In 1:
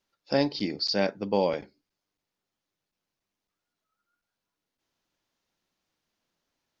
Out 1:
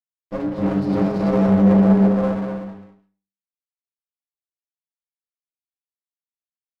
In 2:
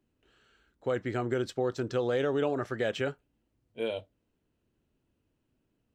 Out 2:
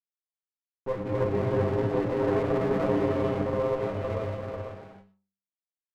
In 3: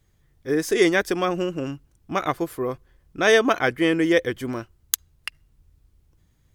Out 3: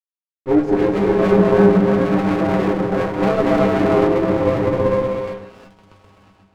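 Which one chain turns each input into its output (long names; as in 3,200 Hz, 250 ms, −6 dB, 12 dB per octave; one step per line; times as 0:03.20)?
echo whose low-pass opens from repeat to repeat 128 ms, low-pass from 200 Hz, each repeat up 1 octave, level 0 dB
centre clipping without the shift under −38 dBFS
reverb reduction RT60 1.7 s
leveller curve on the samples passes 5
low-shelf EQ 150 Hz +8 dB
reverb whose tail is shaped and stops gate 400 ms rising, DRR −3 dB
downward compressor, threshold −1 dBFS
high-pass filter 61 Hz
delay with pitch and tempo change per echo 338 ms, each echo +2 semitones, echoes 3, each echo −6 dB
low-pass filter 1,100 Hz 12 dB per octave
stiff-string resonator 96 Hz, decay 0.46 s, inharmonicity 0.008
windowed peak hold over 17 samples
level +2.5 dB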